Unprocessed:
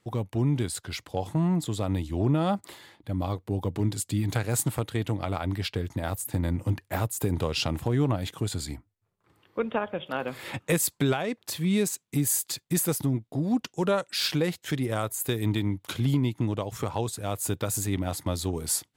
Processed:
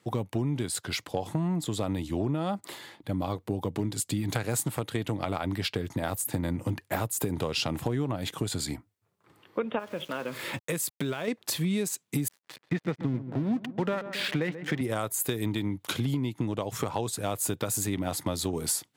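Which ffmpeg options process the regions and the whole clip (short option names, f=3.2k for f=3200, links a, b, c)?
-filter_complex "[0:a]asettb=1/sr,asplit=3[a][b][c];[a]atrim=end=9.794[d];[b]atrim=start=9.79:end=11.28,asetpts=PTS-STARTPTS,afade=t=in:d=0.004:c=qsin,afade=t=out:st=1.486:d=0.004:c=qsin,acompressor=threshold=-36dB:ratio=2:attack=3.2:release=140:knee=1:detection=peak,aeval=exprs='val(0)*gte(abs(val(0)),0.00355)':c=same,bandreject=f=770:w=6.4[e];[c]atrim=start=11.276[f];[d][e]acrossfade=d=0.004:c1=hsin:c2=qsin[g];[g][f]acrossfade=d=0.004:c1=qsin:c2=hsin,asettb=1/sr,asplit=3[h][i][j];[h]atrim=end=12.284[k];[i]atrim=start=12.28:end=14.81,asetpts=PTS-STARTPTS,afade=t=in:d=0.004:c=qsin,afade=t=out:st=2.526:d=0.004:c=qsin,highpass=f=100:w=0.5412,highpass=f=100:w=1.3066,equalizer=f=110:t=q:w=4:g=8,equalizer=f=220:t=q:w=4:g=4,equalizer=f=1.9k:t=q:w=4:g=8,lowpass=f=3.4k:w=0.5412,lowpass=f=3.4k:w=1.3066,aeval=exprs='sgn(val(0))*max(abs(val(0))-0.01,0)':c=same,asplit=2[l][m];[m]adelay=135,lowpass=f=1.5k:p=1,volume=-15dB,asplit=2[n][o];[o]adelay=135,lowpass=f=1.5k:p=1,volume=0.54,asplit=2[p][q];[q]adelay=135,lowpass=f=1.5k:p=1,volume=0.54,asplit=2[r][s];[s]adelay=135,lowpass=f=1.5k:p=1,volume=0.54,asplit=2[t][u];[u]adelay=135,lowpass=f=1.5k:p=1,volume=0.54[v];[l][n][p][r][t][v]amix=inputs=6:normalize=0,atrim=end_sample=111573[w];[j]atrim=start=14.806[x];[k][w]acrossfade=d=0.004:c1=hsin:c2=qsin[y];[y][x]acrossfade=d=0.004:c1=qsin:c2=hsin,highpass=120,acompressor=threshold=-30dB:ratio=6,volume=4.5dB"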